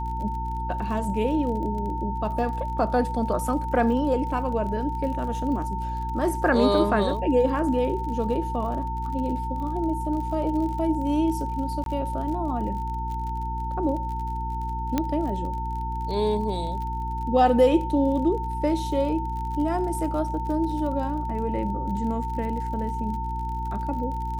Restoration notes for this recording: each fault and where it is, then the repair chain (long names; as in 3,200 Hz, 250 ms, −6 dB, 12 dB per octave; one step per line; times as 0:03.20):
surface crackle 41 per second −34 dBFS
mains hum 60 Hz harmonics 6 −31 dBFS
whistle 900 Hz −30 dBFS
0:11.84–0:11.86: drop-out 22 ms
0:14.98: click −10 dBFS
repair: click removal
notch filter 900 Hz, Q 30
hum removal 60 Hz, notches 6
repair the gap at 0:11.84, 22 ms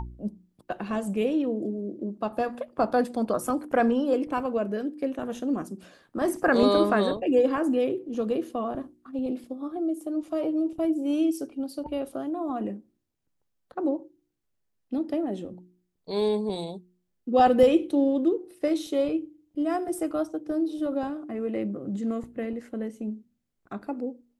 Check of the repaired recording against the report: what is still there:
none of them is left